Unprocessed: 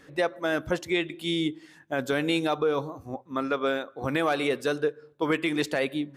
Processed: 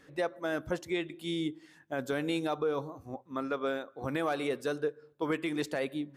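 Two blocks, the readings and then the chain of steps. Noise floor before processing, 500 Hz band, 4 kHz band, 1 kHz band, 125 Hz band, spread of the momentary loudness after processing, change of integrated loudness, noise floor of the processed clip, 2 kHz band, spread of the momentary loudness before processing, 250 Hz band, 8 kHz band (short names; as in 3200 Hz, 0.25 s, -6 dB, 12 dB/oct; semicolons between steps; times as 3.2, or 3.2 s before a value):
-56 dBFS, -5.5 dB, -9.0 dB, -6.0 dB, -5.5 dB, 7 LU, -6.0 dB, -61 dBFS, -8.0 dB, 7 LU, -5.5 dB, -6.5 dB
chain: dynamic EQ 2800 Hz, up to -4 dB, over -45 dBFS, Q 0.87; gain -5.5 dB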